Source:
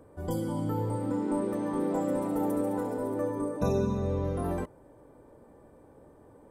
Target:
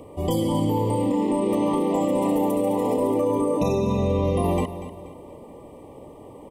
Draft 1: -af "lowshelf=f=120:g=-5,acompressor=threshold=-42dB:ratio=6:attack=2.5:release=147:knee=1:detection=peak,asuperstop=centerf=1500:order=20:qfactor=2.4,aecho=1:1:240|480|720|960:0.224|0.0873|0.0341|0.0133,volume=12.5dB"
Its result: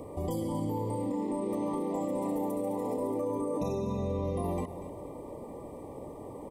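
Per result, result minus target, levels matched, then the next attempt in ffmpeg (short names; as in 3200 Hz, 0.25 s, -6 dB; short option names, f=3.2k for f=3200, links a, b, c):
compressor: peak gain reduction +10 dB; 4000 Hz band -5.0 dB
-af "lowshelf=f=120:g=-5,acompressor=threshold=-30dB:ratio=6:attack=2.5:release=147:knee=1:detection=peak,asuperstop=centerf=1500:order=20:qfactor=2.4,aecho=1:1:240|480|720|960:0.224|0.0873|0.0341|0.0133,volume=12.5dB"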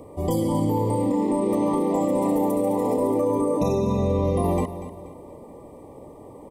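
4000 Hz band -6.0 dB
-af "lowshelf=f=120:g=-5,acompressor=threshold=-30dB:ratio=6:attack=2.5:release=147:knee=1:detection=peak,asuperstop=centerf=1500:order=20:qfactor=2.4,equalizer=f=2.9k:t=o:w=0.46:g=11,aecho=1:1:240|480|720|960:0.224|0.0873|0.0341|0.0133,volume=12.5dB"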